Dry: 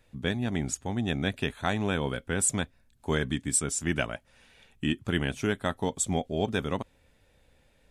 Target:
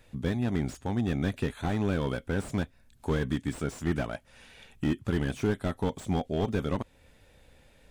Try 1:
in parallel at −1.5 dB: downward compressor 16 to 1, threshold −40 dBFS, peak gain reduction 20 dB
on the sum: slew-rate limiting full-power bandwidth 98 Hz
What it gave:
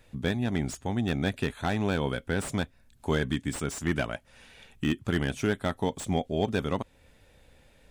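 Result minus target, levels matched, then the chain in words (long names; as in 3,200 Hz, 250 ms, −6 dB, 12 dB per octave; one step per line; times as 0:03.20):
slew-rate limiting: distortion −5 dB
in parallel at −1.5 dB: downward compressor 16 to 1, threshold −40 dBFS, peak gain reduction 20 dB
on the sum: slew-rate limiting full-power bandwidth 33.5 Hz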